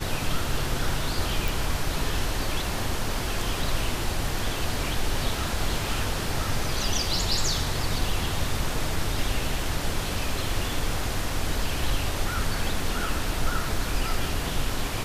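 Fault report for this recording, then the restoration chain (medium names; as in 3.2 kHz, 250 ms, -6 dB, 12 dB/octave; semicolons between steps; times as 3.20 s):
1.48 s: pop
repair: de-click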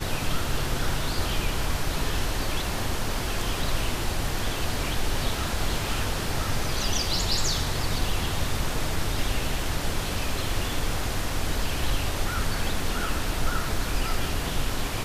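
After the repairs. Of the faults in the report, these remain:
nothing left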